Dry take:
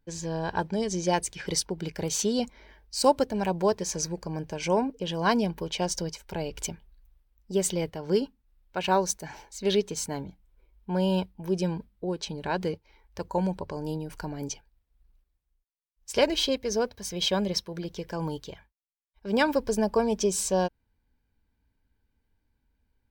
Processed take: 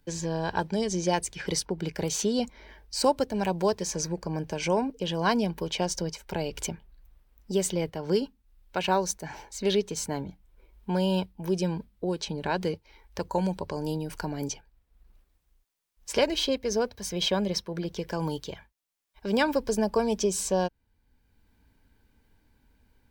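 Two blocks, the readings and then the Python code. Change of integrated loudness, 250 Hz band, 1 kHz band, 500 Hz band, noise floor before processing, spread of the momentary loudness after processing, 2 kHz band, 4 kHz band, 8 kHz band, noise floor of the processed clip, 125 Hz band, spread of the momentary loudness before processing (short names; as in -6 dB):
-0.5 dB, 0.0 dB, -0.5 dB, -0.5 dB, -77 dBFS, 10 LU, 0.0 dB, -0.5 dB, -1.0 dB, -71 dBFS, +0.5 dB, 12 LU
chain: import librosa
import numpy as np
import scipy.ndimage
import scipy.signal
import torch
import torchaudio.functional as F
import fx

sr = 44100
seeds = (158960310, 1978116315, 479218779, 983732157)

y = fx.band_squash(x, sr, depth_pct=40)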